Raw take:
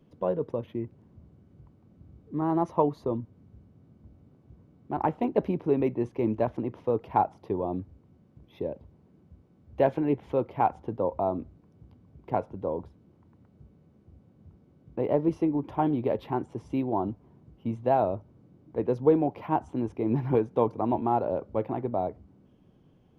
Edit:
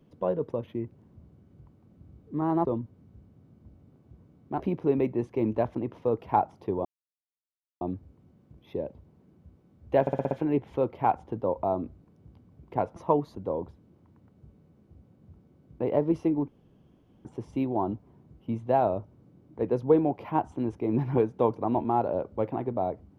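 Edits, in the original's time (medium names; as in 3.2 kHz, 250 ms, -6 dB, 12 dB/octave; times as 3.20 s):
2.65–3.04 s: move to 12.52 s
4.99–5.42 s: delete
7.67 s: insert silence 0.96 s
9.87 s: stutter 0.06 s, 6 plays
15.65–16.42 s: room tone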